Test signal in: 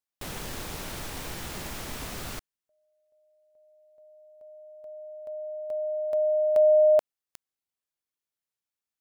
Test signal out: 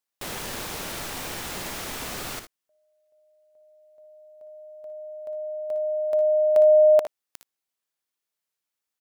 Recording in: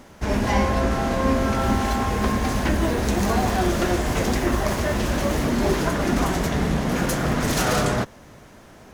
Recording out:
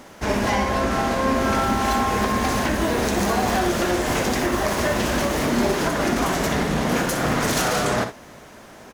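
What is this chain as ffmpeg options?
-filter_complex "[0:a]lowshelf=f=170:g=-10,alimiter=limit=-16dB:level=0:latency=1:release=184,asplit=2[a][b];[b]aecho=0:1:59|76:0.316|0.168[c];[a][c]amix=inputs=2:normalize=0,volume=4.5dB"

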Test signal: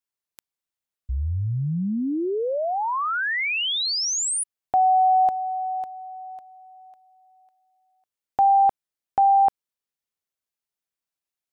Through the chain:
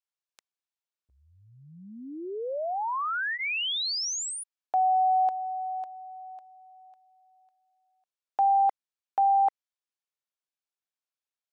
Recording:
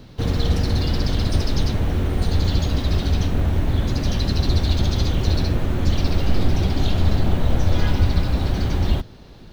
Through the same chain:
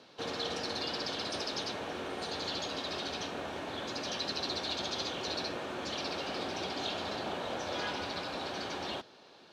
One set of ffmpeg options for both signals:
-af "highpass=500,lowpass=7.1k,bandreject=f=2k:w=13,volume=-4.5dB"

